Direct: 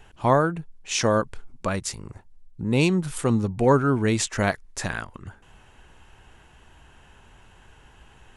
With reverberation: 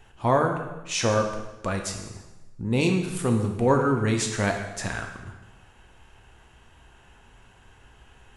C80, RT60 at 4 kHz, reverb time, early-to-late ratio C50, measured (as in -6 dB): 8.0 dB, 1.0 s, 1.1 s, 6.0 dB